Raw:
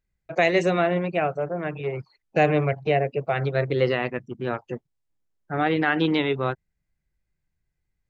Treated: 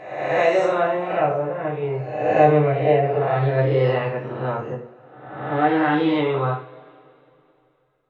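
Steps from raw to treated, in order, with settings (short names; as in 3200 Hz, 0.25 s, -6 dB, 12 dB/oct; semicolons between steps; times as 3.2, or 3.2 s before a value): spectral swells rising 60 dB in 0.99 s; ten-band EQ 125 Hz +6 dB, 250 Hz +3 dB, 500 Hz +8 dB, 1000 Hz +10 dB; reverb, pre-delay 3 ms, DRR -3.5 dB; gain -12 dB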